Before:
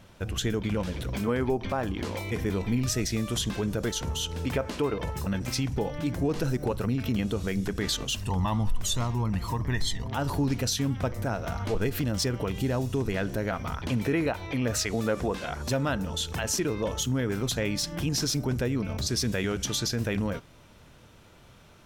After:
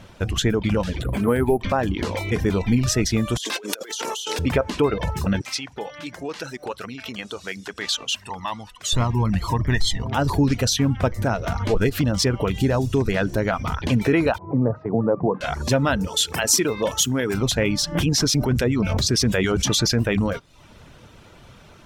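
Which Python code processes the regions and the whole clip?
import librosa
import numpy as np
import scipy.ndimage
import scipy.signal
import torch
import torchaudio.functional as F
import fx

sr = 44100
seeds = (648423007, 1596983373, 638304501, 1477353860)

y = fx.chain(x, sr, fx.lowpass(hz=5800.0, slope=12),
    fx.high_shelf(hz=2600.0, db=-6.5),
    fx.resample_bad(factor=4, down='filtered', up='hold'), at=(1.02, 1.62))
y = fx.chain(y, sr, fx.highpass(hz=330.0, slope=24),
    fx.over_compress(threshold_db=-42.0, ratio=-1.0),
    fx.high_shelf(hz=2100.0, db=11.0), at=(3.37, 4.39))
y = fx.chain(y, sr, fx.highpass(hz=1400.0, slope=6),
    fx.high_shelf(hz=9400.0, db=-9.5), at=(5.41, 8.93))
y = fx.chain(y, sr, fx.cheby1_bandpass(low_hz=110.0, high_hz=1000.0, order=3),
    fx.peak_eq(hz=160.0, db=6.0, octaves=0.35), at=(14.38, 15.41))
y = fx.chain(y, sr, fx.highpass(hz=230.0, slope=6),
    fx.high_shelf(hz=6600.0, db=11.5),
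    fx.notch(hz=6400.0, q=25.0), at=(16.07, 17.34))
y = fx.chain(y, sr, fx.harmonic_tremolo(hz=6.9, depth_pct=50, crossover_hz=1600.0),
    fx.env_flatten(amount_pct=70), at=(17.95, 20.02))
y = fx.dereverb_blind(y, sr, rt60_s=0.55)
y = fx.high_shelf(y, sr, hz=11000.0, db=-10.0)
y = y * librosa.db_to_amplitude(8.5)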